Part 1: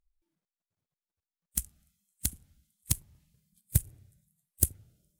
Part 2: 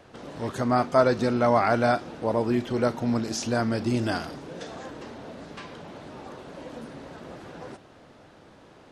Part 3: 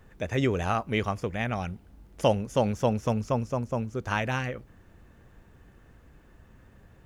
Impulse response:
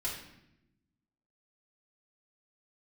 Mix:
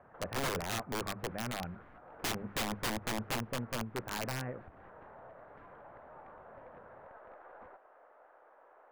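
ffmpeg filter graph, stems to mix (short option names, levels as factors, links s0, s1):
-filter_complex "[0:a]adelay=50,volume=0.237[s0];[1:a]highpass=f=550:w=0.5412,highpass=f=550:w=1.3066,acompressor=threshold=0.0398:ratio=5,aeval=exprs='(mod(66.8*val(0)+1,2)-1)/66.8':c=same,volume=1.12[s1];[2:a]highpass=130,bandreject=f=50:t=h:w=6,bandreject=f=100:t=h:w=6,bandreject=f=150:t=h:w=6,bandreject=f=200:t=h:w=6,volume=0.501[s2];[s0][s1]amix=inputs=2:normalize=0,aeval=exprs='(tanh(17.8*val(0)+0.8)-tanh(0.8))/17.8':c=same,acompressor=threshold=0.00398:ratio=6,volume=1[s3];[s2][s3]amix=inputs=2:normalize=0,lowpass=f=1600:w=0.5412,lowpass=f=1600:w=1.3066,lowshelf=f=93:g=3.5,aeval=exprs='(mod(26.6*val(0)+1,2)-1)/26.6':c=same"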